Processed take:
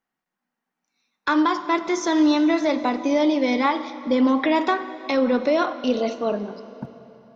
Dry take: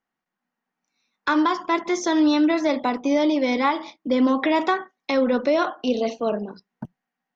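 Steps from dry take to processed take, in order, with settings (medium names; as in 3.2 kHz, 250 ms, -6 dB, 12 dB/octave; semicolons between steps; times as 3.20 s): plate-style reverb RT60 3.6 s, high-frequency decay 0.8×, DRR 12 dB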